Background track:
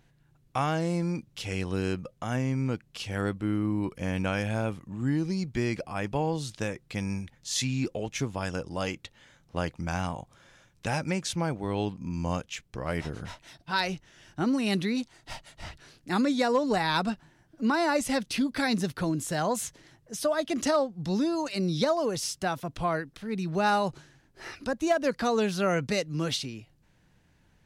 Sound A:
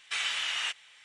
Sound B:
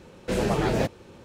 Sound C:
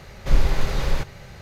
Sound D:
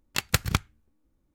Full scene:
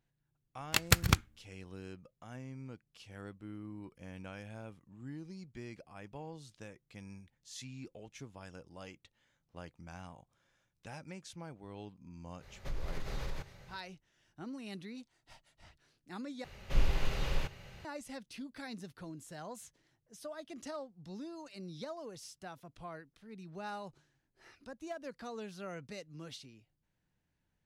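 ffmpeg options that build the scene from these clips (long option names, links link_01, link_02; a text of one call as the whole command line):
ffmpeg -i bed.wav -i cue0.wav -i cue1.wav -i cue2.wav -i cue3.wav -filter_complex "[3:a]asplit=2[link_01][link_02];[0:a]volume=-18dB[link_03];[link_01]acompressor=threshold=-18dB:ratio=6:attack=3.2:release=140:knee=1:detection=peak[link_04];[link_02]equalizer=frequency=2800:width=3.5:gain=7.5[link_05];[link_03]asplit=2[link_06][link_07];[link_06]atrim=end=16.444[link_08];[link_05]atrim=end=1.41,asetpts=PTS-STARTPTS,volume=-11dB[link_09];[link_07]atrim=start=17.846[link_10];[4:a]atrim=end=1.34,asetpts=PTS-STARTPTS,volume=-2dB,afade=type=in:duration=0.004:curve=hsin,afade=type=out:start_time=1.336:duration=0.004:curve=hsin,adelay=580[link_11];[link_04]atrim=end=1.41,asetpts=PTS-STARTPTS,volume=-14dB,afade=type=in:duration=0.05,afade=type=out:start_time=1.36:duration=0.05,adelay=12390[link_12];[link_08][link_09]acrossfade=duration=0.004:curve1=hsin:curve2=hsin[link_13];[link_13][link_10]acrossfade=duration=0.004:curve1=hsin:curve2=hsin[link_14];[link_14][link_11][link_12]amix=inputs=3:normalize=0" out.wav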